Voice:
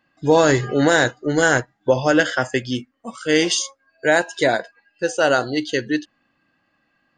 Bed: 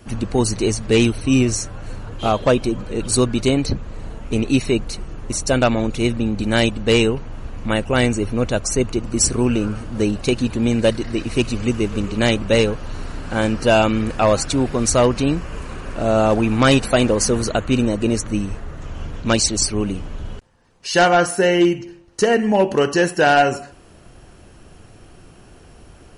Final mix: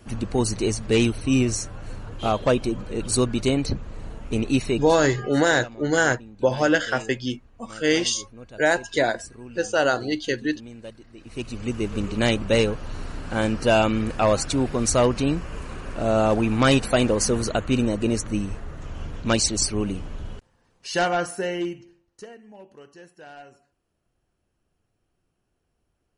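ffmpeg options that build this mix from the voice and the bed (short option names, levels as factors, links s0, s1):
-filter_complex "[0:a]adelay=4550,volume=0.668[s0];[1:a]volume=5.62,afade=t=out:st=4.65:d=0.63:silence=0.112202,afade=t=in:st=11.17:d=0.87:silence=0.105925,afade=t=out:st=20.12:d=2.23:silence=0.0501187[s1];[s0][s1]amix=inputs=2:normalize=0"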